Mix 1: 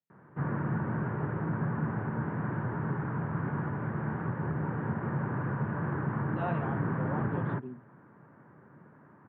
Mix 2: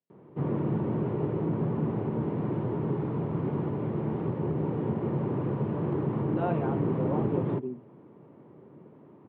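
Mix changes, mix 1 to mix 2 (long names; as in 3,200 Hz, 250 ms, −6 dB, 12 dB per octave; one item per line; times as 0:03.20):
background: remove low-pass with resonance 1,600 Hz, resonance Q 5.6
master: add parametric band 390 Hz +10 dB 1.3 octaves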